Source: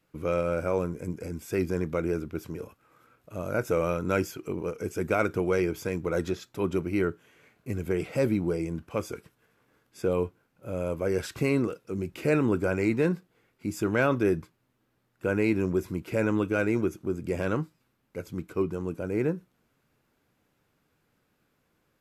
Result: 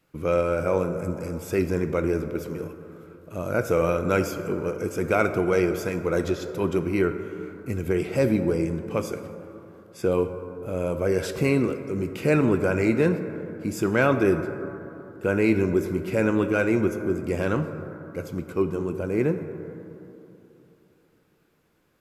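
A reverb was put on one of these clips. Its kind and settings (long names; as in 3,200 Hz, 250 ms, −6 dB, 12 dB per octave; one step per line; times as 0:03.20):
dense smooth reverb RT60 3.2 s, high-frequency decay 0.3×, DRR 8 dB
level +3.5 dB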